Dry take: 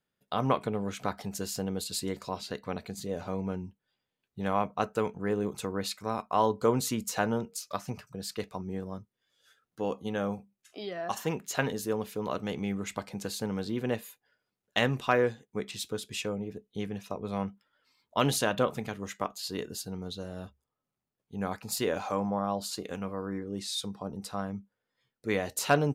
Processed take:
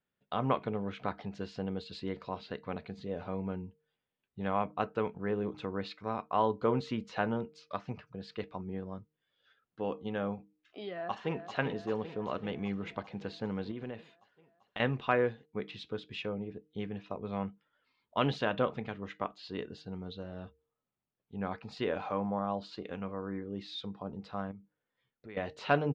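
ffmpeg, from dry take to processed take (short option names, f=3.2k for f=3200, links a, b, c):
-filter_complex "[0:a]asplit=2[a][b];[b]afade=t=in:st=10.85:d=0.01,afade=t=out:st=11.55:d=0.01,aecho=0:1:390|780|1170|1560|1950|2340|2730|3120|3510|3900:0.334965|0.234476|0.164133|0.114893|0.0804252|0.0562976|0.0394083|0.0275858|0.0193101|0.0135171[c];[a][c]amix=inputs=2:normalize=0,asettb=1/sr,asplit=3[d][e][f];[d]atrim=end=13.714[g];[e]atrim=start=13.71:end=14.8,asetpts=PTS-STARTPTS,afade=t=in:d=0.004:c=qsin,afade=t=out:st=1.086:d=0.004:c=qsin,acompressor=threshold=-33dB:ratio=6:attack=3.2:release=140:knee=1:detection=peak[h];[f]atrim=start=14.796[i];[g][h]acrossfade=d=0.004:c1=hsin:c2=qsin[j];[j][i]acrossfade=d=0.004:c1=qsin:c2=hsin,asettb=1/sr,asplit=3[k][l][m];[k]atrim=end=24.514[n];[l]atrim=start=24.51:end=25.37,asetpts=PTS-STARTPTS,afade=t=in:d=0.004:c=qsin,afade=t=out:st=0.856:d=0.004:c=qsin,acompressor=threshold=-45dB:ratio=3:attack=3.2:release=140:knee=1:detection=peak[o];[m]atrim=start=25.366[p];[n][o]acrossfade=d=0.004:c1=hsin:c2=qsin[q];[q][p]acrossfade=d=0.004:c1=qsin:c2=hsin,lowpass=f=3.6k:w=0.5412,lowpass=f=3.6k:w=1.3066,bandreject=f=153.4:t=h:w=4,bandreject=f=306.8:t=h:w=4,bandreject=f=460.2:t=h:w=4,volume=-3dB"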